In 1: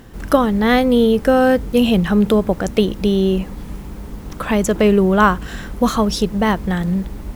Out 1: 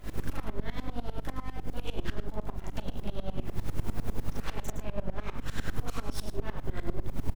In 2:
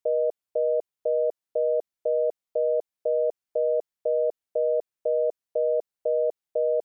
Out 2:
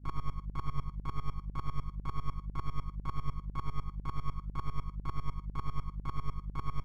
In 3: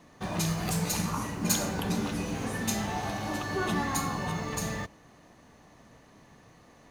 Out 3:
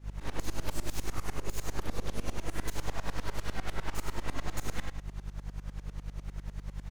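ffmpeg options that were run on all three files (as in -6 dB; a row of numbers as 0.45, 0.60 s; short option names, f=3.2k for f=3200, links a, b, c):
-filter_complex "[0:a]acompressor=threshold=-39dB:ratio=2,alimiter=level_in=3.5dB:limit=-24dB:level=0:latency=1:release=39,volume=-3.5dB,acrossover=split=140[a][b];[b]acompressor=threshold=-39dB:ratio=6[c];[a][c]amix=inputs=2:normalize=0,aeval=exprs='abs(val(0))':c=same,flanger=delay=2.9:depth=6.9:regen=75:speed=0.39:shape=sinusoidal,aeval=exprs='val(0)+0.00501*(sin(2*PI*50*n/s)+sin(2*PI*2*50*n/s)/2+sin(2*PI*3*50*n/s)/3+sin(2*PI*4*50*n/s)/4+sin(2*PI*5*50*n/s)/5)':c=same,asplit=2[d][e];[e]adelay=38,volume=-3dB[f];[d][f]amix=inputs=2:normalize=0,aecho=1:1:114:0.355,aeval=exprs='val(0)*pow(10,-22*if(lt(mod(-10*n/s,1),2*abs(-10)/1000),1-mod(-10*n/s,1)/(2*abs(-10)/1000),(mod(-10*n/s,1)-2*abs(-10)/1000)/(1-2*abs(-10)/1000))/20)':c=same,volume=13dB"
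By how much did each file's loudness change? -22.5, -14.0, -9.0 LU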